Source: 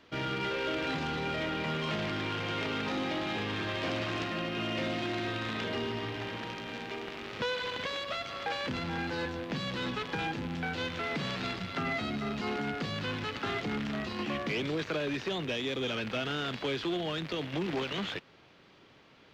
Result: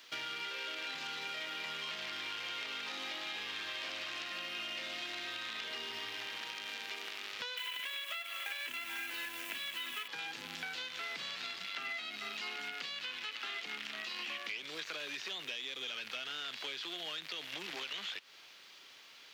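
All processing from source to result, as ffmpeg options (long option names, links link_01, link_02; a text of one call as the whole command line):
ffmpeg -i in.wav -filter_complex "[0:a]asettb=1/sr,asplit=3[link_01][link_02][link_03];[link_01]atrim=end=7.574[link_04];[link_02]atrim=start=7.57:end=10.08,asetpts=PTS-STARTPTS,afade=type=in:duration=0.004:curve=qsin,afade=type=out:start_time=2.506:duration=0.004:curve=qsin,lowpass=frequency=2700:width_type=q:width=2.2,acrusher=bits=3:mode=log:mix=0:aa=0.000001,aecho=1:1:3:0.6,atrim=end_sample=110691[link_05];[link_03]atrim=start=10.076[link_06];[link_04][link_05]acrossfade=duration=0.004:curve1=hsin:curve2=qsin[link_07];[link_07][link_06]acrossfade=duration=0.004:curve1=qsin:curve2=hsin,asettb=1/sr,asplit=3[link_08][link_09][link_10];[link_08]atrim=end=11.644[link_11];[link_09]atrim=start=11.64:end=14.57,asetpts=PTS-STARTPTS,afade=type=in:duration=0.004:curve=qsin,afade=type=out:start_time=2.926:duration=0.004:curve=qsin,highpass=160,equalizer=frequency=2600:width=1.4:gain=4.5[link_12];[link_10]atrim=start=14.566[link_13];[link_11][link_12]acrossfade=duration=0.004:curve1=hsin:curve2=qsin[link_14];[link_14][link_13]acrossfade=duration=0.004:curve1=qsin:curve2=hsin,acrossover=split=4500[link_15][link_16];[link_16]acompressor=threshold=-55dB:ratio=4:attack=1:release=60[link_17];[link_15][link_17]amix=inputs=2:normalize=0,aderivative,acompressor=threshold=-53dB:ratio=6,volume=14.5dB" out.wav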